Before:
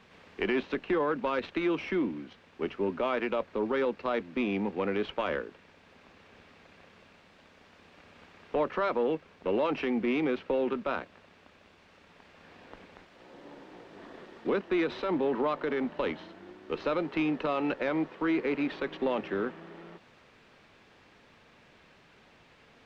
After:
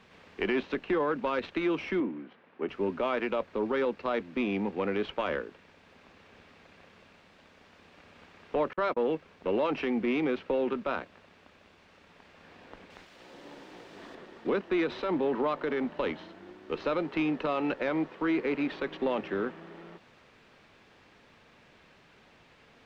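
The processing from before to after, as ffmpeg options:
-filter_complex "[0:a]asettb=1/sr,asplit=3[a][b][c];[a]atrim=end=2.004[d];[b]atrim=start=2:end=2.69,asetpts=PTS-STARTPTS,afade=t=in:d=0.004:c=qsin,afade=t=out:st=0.686:d=0.004:c=qsin,highpass=190,lowpass=2.1k[e];[c]atrim=start=2.686[f];[d][e]acrossfade=d=0.004:c1=hsin:c2=qsin[g];[g][f]acrossfade=d=0.004:c1=qsin:c2=hsin,asettb=1/sr,asplit=3[h][i][j];[h]atrim=end=8.734[k];[i]atrim=start=8.73:end=9.15,asetpts=PTS-STARTPTS,afade=t=in:d=0.004:c=qsin,afade=t=out:st=0.416:d=0.004:c=qsin,agate=range=-41dB:threshold=-32dB:ratio=16:release=100:detection=peak[l];[j]atrim=start=9.146[m];[k][l]acrossfade=d=0.004:c1=hsin:c2=qsin[n];[n][m]acrossfade=d=0.004:c1=qsin:c2=hsin,asettb=1/sr,asplit=3[o][p][q];[o]atrim=end=12.904[r];[p]atrim=start=12.9:end=14.15,asetpts=PTS-STARTPTS,afade=t=in:d=0.004:c=qsin,afade=t=out:st=1.246:d=0.004:c=qsin,highshelf=f=2.6k:g=8.5[s];[q]atrim=start=14.146[t];[r][s]acrossfade=d=0.004:c1=hsin:c2=qsin[u];[u][t]acrossfade=d=0.004:c1=qsin:c2=hsin"

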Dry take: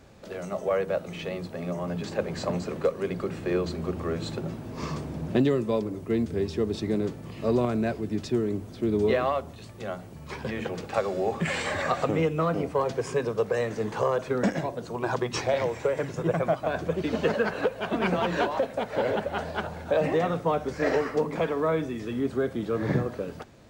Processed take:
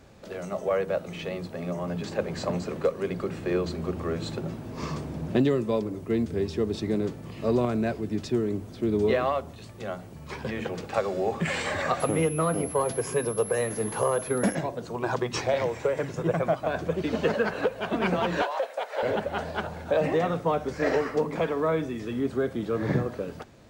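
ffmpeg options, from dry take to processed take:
-filter_complex "[0:a]asettb=1/sr,asplit=3[a][b][c];[a]atrim=end=12.004[d];[b]atrim=start=12:end=14.55,asetpts=PTS-STARTPTS,afade=t=in:d=0.004:c=qsin,afade=t=out:st=2.546:d=0.004:c=qsin,aeval=exprs='val(0)+0.0141*sin(2*PI*11000*n/s)':c=same[e];[c]atrim=start=14.546[f];[d][e]acrossfade=d=0.004:c1=hsin:c2=qsin[g];[g][f]acrossfade=d=0.004:c1=qsin:c2=hsin,asettb=1/sr,asplit=3[h][i][j];[h]atrim=end=18.424[k];[i]atrim=start=18.42:end=19.03,asetpts=PTS-STARTPTS,afade=t=in:d=0.004:c=qsin,afade=t=out:st=0.606:d=0.004:c=qsin,highpass=f=520:w=0.5412,highpass=f=520:w=1.3066[l];[j]atrim=start=19.026[m];[k][l]acrossfade=d=0.004:c1=hsin:c2=qsin[n];[n][m]acrossfade=d=0.004:c1=qsin:c2=hsin"

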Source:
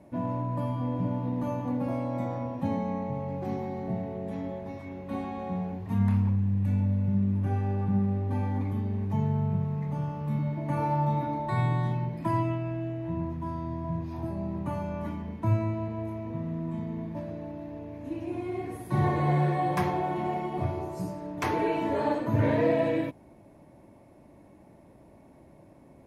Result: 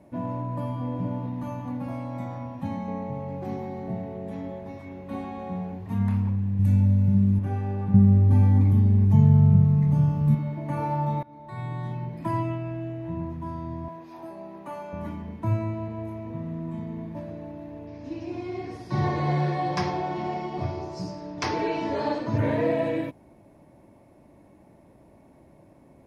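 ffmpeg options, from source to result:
-filter_complex "[0:a]asettb=1/sr,asplit=3[a][b][c];[a]atrim=end=1.264[d];[b]atrim=start=1.26:end=2.88,asetpts=PTS-STARTPTS,afade=t=in:d=0.004:c=qsin,afade=t=out:st=1.616:d=0.004:c=qsin,equalizer=f=430:t=o:w=0.77:g=-11.5[e];[c]atrim=start=2.876[f];[d][e]acrossfade=d=0.004:c1=hsin:c2=qsin[g];[g][f]acrossfade=d=0.004:c1=qsin:c2=hsin,asettb=1/sr,asplit=3[h][i][j];[h]atrim=end=6.594[k];[i]atrim=start=6.59:end=7.39,asetpts=PTS-STARTPTS,afade=t=in:d=0.004:c=qsin,afade=t=out:st=0.796:d=0.004:c=qsin,bass=f=250:g=7,treble=f=4k:g=10[l];[j]atrim=start=7.386[m];[k][l]acrossfade=d=0.004:c1=hsin:c2=qsin[n];[n][m]acrossfade=d=0.004:c1=qsin:c2=hsin,asettb=1/sr,asplit=3[o][p][q];[o]atrim=end=7.944[r];[p]atrim=start=7.94:end=10.35,asetpts=PTS-STARTPTS,afade=t=in:d=0.004:c=qsin,afade=t=out:st=2.406:d=0.004:c=qsin,bass=f=250:g=13,treble=f=4k:g=6[s];[q]atrim=start=10.346[t];[r][s]acrossfade=d=0.004:c1=hsin:c2=qsin[u];[u][t]acrossfade=d=0.004:c1=qsin:c2=hsin,asettb=1/sr,asplit=3[v][w][x];[v]atrim=end=13.884[y];[w]atrim=start=13.88:end=14.93,asetpts=PTS-STARTPTS,afade=t=in:d=0.004:c=qsin,afade=t=out:st=1.046:d=0.004:c=qsin,highpass=410[z];[x]atrim=start=14.926[aa];[y][z]acrossfade=d=0.004:c1=hsin:c2=qsin[ab];[ab][aa]acrossfade=d=0.004:c1=qsin:c2=hsin,asettb=1/sr,asplit=3[ac][ad][ae];[ac]atrim=end=17.874[af];[ad]atrim=start=17.87:end=22.38,asetpts=PTS-STARTPTS,afade=t=in:d=0.004:c=qsin,afade=t=out:st=4.506:d=0.004:c=qsin,lowpass=f=5.2k:t=q:w=5[ag];[ae]atrim=start=22.376[ah];[af][ag]acrossfade=d=0.004:c1=hsin:c2=qsin[ai];[ai][ah]acrossfade=d=0.004:c1=qsin:c2=hsin,asplit=2[aj][ak];[aj]atrim=end=11.23,asetpts=PTS-STARTPTS,afade=t=out:st=11.226:d=0.004:c=hsin:silence=0.0707946[al];[ak]atrim=start=11.23,asetpts=PTS-STARTPTS,afade=t=in:d=1.05:silence=0.0707946[am];[al][am]concat=n=2:v=0:a=1"

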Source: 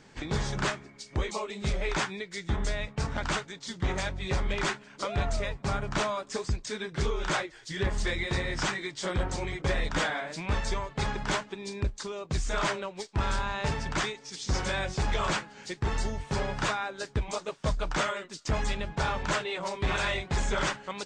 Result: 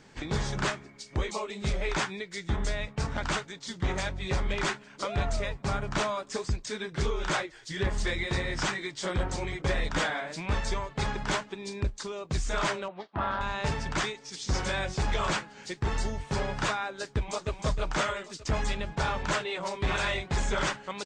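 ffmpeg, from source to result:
-filter_complex "[0:a]asettb=1/sr,asplit=3[a][b][c];[a]atrim=end=12.884[d];[b]atrim=start=12.88:end=13.41,asetpts=PTS-STARTPTS,afade=t=in:d=0.004:c=qsin,afade=t=out:st=0.526:d=0.004:c=qsin,highpass=110,equalizer=f=130:t=q:w=4:g=-8,equalizer=f=430:t=q:w=4:g=-6,equalizer=f=680:t=q:w=4:g=8,equalizer=f=1.2k:t=q:w=4:g=6,equalizer=f=2.4k:t=q:w=4:g=-9,lowpass=f=3.1k:w=0.5412,lowpass=f=3.1k:w=1.3066[e];[c]atrim=start=13.406[f];[d][e]acrossfade=d=0.004:c1=hsin:c2=qsin[g];[g][f]acrossfade=d=0.004:c1=qsin:c2=hsin,asplit=2[h][i];[i]afade=t=in:st=17.05:d=0.01,afade=t=out:st=17.5:d=0.01,aecho=0:1:310|620|930|1240|1550|1860:0.530884|0.265442|0.132721|0.0663606|0.0331803|0.0165901[j];[h][j]amix=inputs=2:normalize=0"

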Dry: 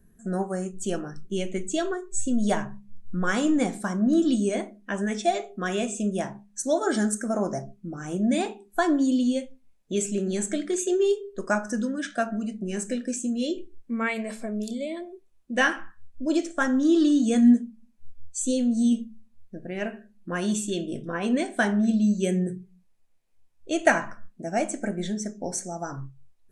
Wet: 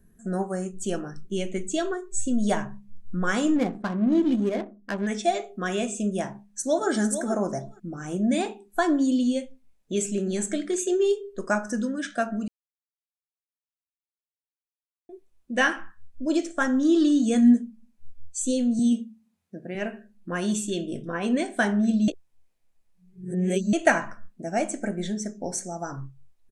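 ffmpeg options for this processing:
-filter_complex "[0:a]asettb=1/sr,asplit=3[a][b][c];[a]atrim=end=3.564[d];[b]atrim=start=3.56:end=5.07,asetpts=PTS-STARTPTS,afade=t=in:d=0.004:c=qsin,afade=t=out:st=1.506:d=0.004:c=qsin,adynamicsmooth=sensitivity=3.5:basefreq=520[e];[c]atrim=start=5.066[f];[d][e]acrossfade=d=0.004:c1=hsin:c2=qsin[g];[g][f]acrossfade=d=0.004:c1=qsin:c2=hsin,asplit=2[h][i];[i]afade=t=in:st=6.33:d=0.01,afade=t=out:st=6.89:d=0.01,aecho=0:1:450|900:0.354813|0.0354813[j];[h][j]amix=inputs=2:normalize=0,asettb=1/sr,asplit=3[k][l][m];[k]atrim=end=18.794[n];[l]atrim=start=18.79:end=19.75,asetpts=PTS-STARTPTS,afade=t=in:d=0.004:c=qsin,afade=t=out:st=0.956:d=0.004:c=qsin,highpass=f=130:w=0.5412,highpass=f=130:w=1.3066[o];[m]atrim=start=19.746[p];[n][o]acrossfade=d=0.004:c1=hsin:c2=qsin[q];[q][p]acrossfade=d=0.004:c1=qsin:c2=hsin,asplit=5[r][s][t][u][v];[r]atrim=end=12.48,asetpts=PTS-STARTPTS,afade=t=out:st=12.476:d=0.004:c=hsin[w];[s]atrim=start=12.48:end=15.09,asetpts=PTS-STARTPTS,volume=0[x];[t]atrim=start=15.09:end=22.082,asetpts=PTS-STARTPTS,afade=t=in:d=0.004:c=hsin[y];[u]atrim=start=22.078:end=23.732,asetpts=PTS-STARTPTS,areverse[z];[v]atrim=start=23.728[aa];[w][x][y]concat=n=3:v=0:a=1[ab];[ab][z]acrossfade=d=0.004:c1=hsin:c2=hsin[ac];[ac][aa]acrossfade=d=0.004:c1=hsin:c2=hsin"

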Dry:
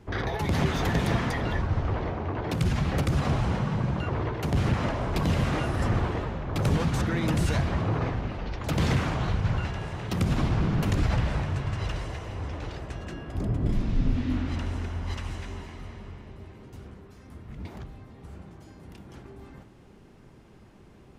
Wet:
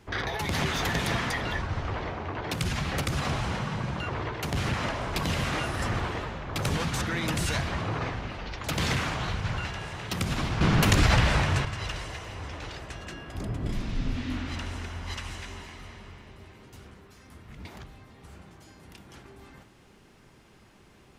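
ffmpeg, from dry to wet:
-filter_complex "[0:a]asplit=3[a][b][c];[a]atrim=end=10.612[d];[b]atrim=start=10.608:end=11.652,asetpts=PTS-STARTPTS,volume=8dB[e];[c]atrim=start=11.648[f];[d][e]acrossfade=d=0.004:c1=hsin:c2=hsin[g];[g][f]acrossfade=d=0.004:c1=hsin:c2=hsin,tiltshelf=f=970:g=-5.5"

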